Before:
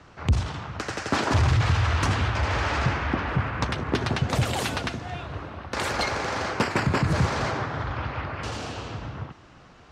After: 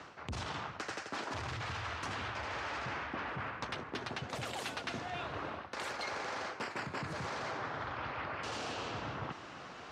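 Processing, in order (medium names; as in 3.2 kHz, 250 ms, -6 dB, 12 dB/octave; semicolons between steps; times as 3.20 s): high-pass 400 Hz 6 dB/octave; treble shelf 9.3 kHz -7 dB; reverse; compression 16:1, threshold -42 dBFS, peak gain reduction 22 dB; reverse; trim +5.5 dB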